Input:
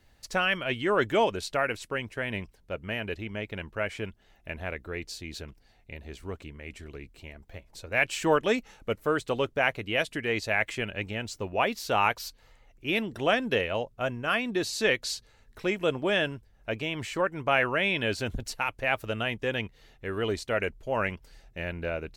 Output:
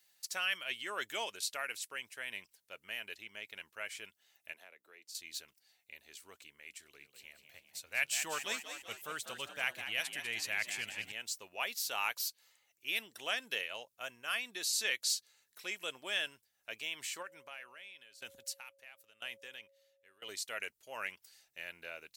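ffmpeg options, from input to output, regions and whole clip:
-filter_complex "[0:a]asettb=1/sr,asplit=3[s0][s1][s2];[s0]atrim=end=4.534[s3];[s1]atrim=start=4.53:end=5.15,asetpts=PTS-STARTPTS,afade=t=in:d=0.004:c=qsin,afade=t=out:st=0.616:d=0.004:c=qsin,highpass=180,acrossover=split=360|800[s4][s5][s6];[s4]acompressor=threshold=0.00224:ratio=4[s7];[s5]acompressor=threshold=0.00562:ratio=4[s8];[s6]acompressor=threshold=0.00316:ratio=4[s9];[s7][s8][s9]amix=inputs=3:normalize=0[s10];[s2]atrim=start=5.146[s11];[s3][s10]acrossfade=d=0.004:c1=hsin:c2=qsin[s12];[s12][s11]acrossfade=d=0.004:c1=qsin:c2=hsin,asettb=1/sr,asplit=3[s13][s14][s15];[s13]atrim=end=6.814[s16];[s14]atrim=start=6.81:end=11.12,asetpts=PTS-STARTPTS,afade=t=in:d=0.004:c=qsin,afade=t=out:st=4.306:d=0.004:c=qsin,asubboost=boost=5.5:cutoff=180,asplit=8[s17][s18][s19][s20][s21][s22][s23][s24];[s18]adelay=196,afreqshift=64,volume=0.335[s25];[s19]adelay=392,afreqshift=128,volume=0.188[s26];[s20]adelay=588,afreqshift=192,volume=0.105[s27];[s21]adelay=784,afreqshift=256,volume=0.0589[s28];[s22]adelay=980,afreqshift=320,volume=0.0331[s29];[s23]adelay=1176,afreqshift=384,volume=0.0184[s30];[s24]adelay=1372,afreqshift=448,volume=0.0104[s31];[s17][s25][s26][s27][s28][s29][s30][s31]amix=inputs=8:normalize=0,atrim=end_sample=190071[s32];[s15]atrim=start=11.116[s33];[s16][s32]acrossfade=d=0.004:c1=hsin:c2=qsin[s34];[s34][s33]acrossfade=d=0.004:c1=qsin:c2=hsin,asettb=1/sr,asplit=3[s35][s36][s37];[s35]atrim=end=17.224[s38];[s36]atrim=start=17.22:end=20.29,asetpts=PTS-STARTPTS,afade=t=in:d=0.004:c=qsin,afade=t=out:st=3.066:d=0.004:c=qsin,acompressor=threshold=0.0447:ratio=4:attack=3.2:release=140:knee=1:detection=peak,aeval=exprs='val(0)+0.0126*sin(2*PI*550*n/s)':c=same,aeval=exprs='val(0)*pow(10,-20*if(lt(mod(1*n/s,1),2*abs(1)/1000),1-mod(1*n/s,1)/(2*abs(1)/1000),(mod(1*n/s,1)-2*abs(1)/1000)/(1-2*abs(1)/1000))/20)':c=same[s39];[s37]atrim=start=20.286[s40];[s38][s39]acrossfade=d=0.004:c1=hsin:c2=qsin[s41];[s41][s40]acrossfade=d=0.004:c1=qsin:c2=hsin,highpass=56,aderivative,volume=1.41"

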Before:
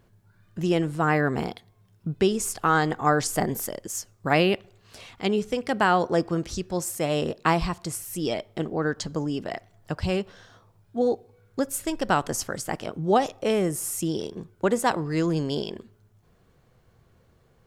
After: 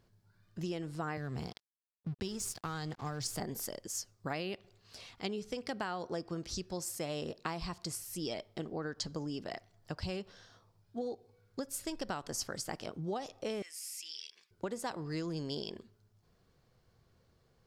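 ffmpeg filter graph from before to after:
-filter_complex "[0:a]asettb=1/sr,asplit=3[s0][s1][s2];[s0]atrim=end=1.174[s3];[s1]atrim=start=1.17:end=3.4,asetpts=PTS-STARTPTS,afade=t=in:d=0.004:c=qsin,afade=t=out:st=2.226:d=0.004:c=qsin,equalizer=f=110:w=0.88:g=10,acrossover=split=130|3000[s4][s5][s6];[s5]acompressor=threshold=0.0178:ratio=1.5:attack=3.2:release=140:knee=2.83:detection=peak[s7];[s4][s7][s6]amix=inputs=3:normalize=0,aeval=exprs='sgn(val(0))*max(abs(val(0))-0.00794,0)':c=same[s8];[s2]atrim=start=3.396[s9];[s3][s8]acrossfade=d=0.004:c1=hsin:c2=qsin[s10];[s10][s9]acrossfade=d=0.004:c1=qsin:c2=hsin,asettb=1/sr,asplit=3[s11][s12][s13];[s11]atrim=end=13.624[s14];[s12]atrim=start=13.62:end=14.51,asetpts=PTS-STARTPTS,afade=t=in:d=0.004:c=qsin,afade=t=out:st=0.886:d=0.004:c=qsin,highpass=f=2300:t=q:w=3.2,equalizer=f=5000:t=o:w=0.24:g=7.5,acompressor=threshold=0.00562:ratio=1.5:attack=3.2:release=140:knee=1:detection=peak[s15];[s13]atrim=start=14.506[s16];[s14][s15]acrossfade=d=0.004:c1=hsin:c2=qsin[s17];[s17][s16]acrossfade=d=0.004:c1=qsin:c2=hsin,acompressor=threshold=0.0562:ratio=10,equalizer=f=4800:t=o:w=0.69:g=8.5,volume=0.355"

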